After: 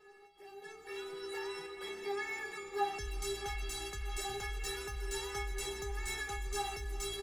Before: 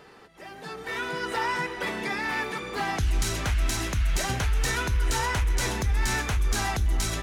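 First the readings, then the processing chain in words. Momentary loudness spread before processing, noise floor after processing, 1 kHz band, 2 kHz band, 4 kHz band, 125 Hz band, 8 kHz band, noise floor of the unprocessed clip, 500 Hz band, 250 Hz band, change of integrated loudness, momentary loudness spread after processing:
6 LU, -57 dBFS, -10.5 dB, -12.5 dB, -9.5 dB, -18.5 dB, -10.5 dB, -50 dBFS, -5.5 dB, -15.5 dB, -12.0 dB, 7 LU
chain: metallic resonator 400 Hz, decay 0.33 s, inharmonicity 0.008; feedback echo 0.636 s, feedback 53%, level -15 dB; gain +6.5 dB

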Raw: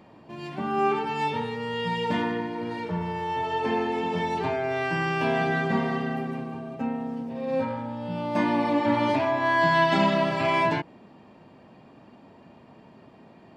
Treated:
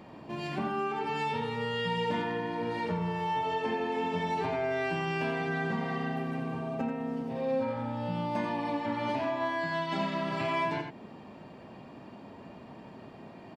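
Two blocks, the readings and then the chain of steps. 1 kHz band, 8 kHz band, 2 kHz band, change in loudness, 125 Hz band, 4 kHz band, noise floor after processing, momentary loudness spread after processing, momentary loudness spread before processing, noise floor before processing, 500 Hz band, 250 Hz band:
-6.0 dB, n/a, -7.0 dB, -6.0 dB, -4.0 dB, -5.0 dB, -49 dBFS, 18 LU, 11 LU, -52 dBFS, -5.5 dB, -6.0 dB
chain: compressor 6:1, threshold -32 dBFS, peak gain reduction 15 dB; on a send: echo 87 ms -6.5 dB; on the sum: gain +2.5 dB

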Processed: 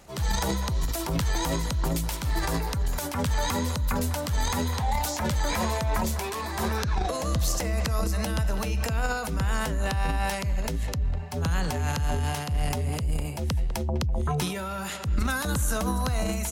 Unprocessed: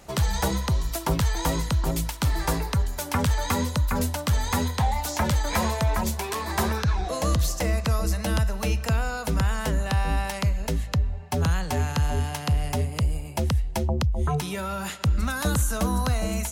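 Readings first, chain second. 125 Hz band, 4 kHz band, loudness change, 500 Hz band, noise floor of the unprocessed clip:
-3.0 dB, -1.0 dB, -2.0 dB, -1.5 dB, -35 dBFS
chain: speakerphone echo 0.2 s, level -16 dB; transient shaper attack -7 dB, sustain +9 dB; gain -2.5 dB

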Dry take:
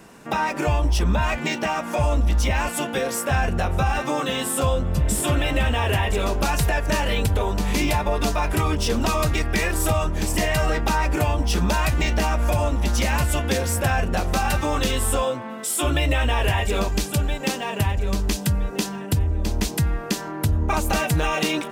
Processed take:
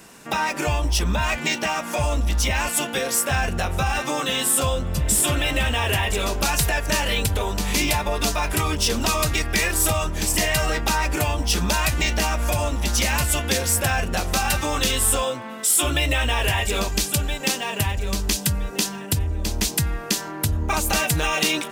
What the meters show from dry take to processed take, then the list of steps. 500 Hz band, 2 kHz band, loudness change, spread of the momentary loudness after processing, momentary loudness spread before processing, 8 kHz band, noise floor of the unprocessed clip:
-2.0 dB, +2.5 dB, +1.0 dB, 5 LU, 3 LU, +7.0 dB, -32 dBFS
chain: high shelf 2100 Hz +10 dB; gain -2.5 dB

